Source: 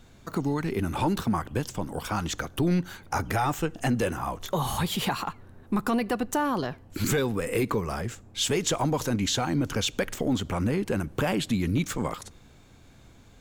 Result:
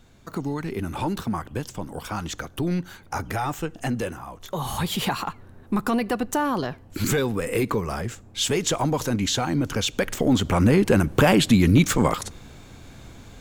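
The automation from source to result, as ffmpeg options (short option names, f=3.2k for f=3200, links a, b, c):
-af "volume=16.5dB,afade=t=out:st=3.99:d=0.28:silence=0.446684,afade=t=in:st=4.27:d=0.67:silence=0.298538,afade=t=in:st=9.9:d=0.9:silence=0.446684"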